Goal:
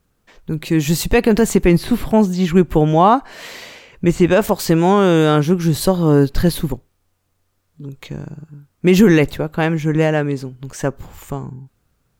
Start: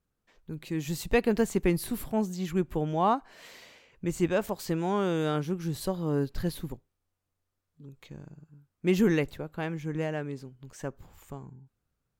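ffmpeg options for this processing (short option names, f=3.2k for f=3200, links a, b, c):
-filter_complex "[0:a]asettb=1/sr,asplit=3[a][b][c];[a]atrim=end=1.554[d];[b]atrim=start=1.55:end=4.26,asetpts=PTS-STARTPTS,afade=t=in:d=0.004:c=qsin,afade=t=out:st=2.706:d=0.004:c=qsin,acrossover=split=4700[e][f];[f]acompressor=threshold=-54dB:ratio=4:attack=1:release=60[g];[e][g]amix=inputs=2:normalize=0[h];[c]atrim=start=4.256[i];[d][h]acrossfade=d=0.004:c1=hsin:c2=qsin[j];[j][i]acrossfade=d=0.004:c1=qsin:c2=hsin,alimiter=level_in=17dB:limit=-1dB:release=50:level=0:latency=1,volume=-1dB"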